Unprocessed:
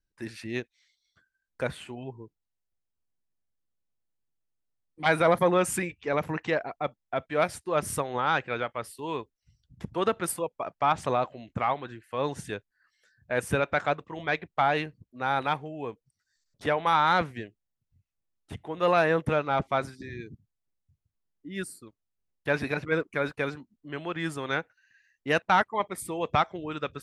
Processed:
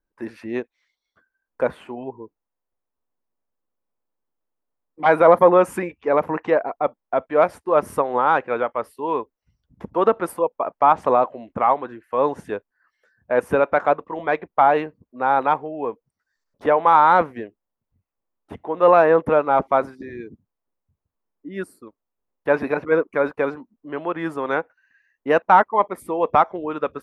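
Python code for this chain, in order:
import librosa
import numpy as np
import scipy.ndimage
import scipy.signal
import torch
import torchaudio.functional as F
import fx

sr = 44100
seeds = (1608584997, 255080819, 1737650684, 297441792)

y = fx.graphic_eq(x, sr, hz=(125, 250, 500, 1000, 4000, 8000), db=(-6, 6, 8, 10, -6, -10))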